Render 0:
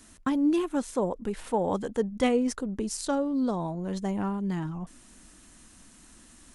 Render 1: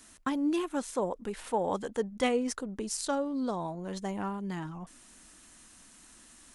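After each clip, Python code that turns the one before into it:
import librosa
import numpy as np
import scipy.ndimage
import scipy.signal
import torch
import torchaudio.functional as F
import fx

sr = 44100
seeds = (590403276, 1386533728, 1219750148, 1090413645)

y = fx.low_shelf(x, sr, hz=370.0, db=-8.5)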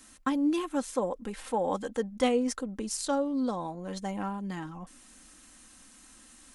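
y = x + 0.43 * np.pad(x, (int(3.8 * sr / 1000.0), 0))[:len(x)]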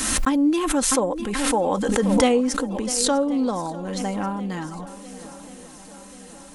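y = fx.echo_swing(x, sr, ms=1084, ratio=1.5, feedback_pct=57, wet_db=-18)
y = fx.pre_swell(y, sr, db_per_s=30.0)
y = y * librosa.db_to_amplitude(7.0)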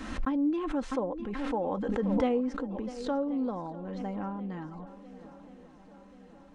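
y = fx.spacing_loss(x, sr, db_at_10k=35)
y = y * librosa.db_to_amplitude(-7.5)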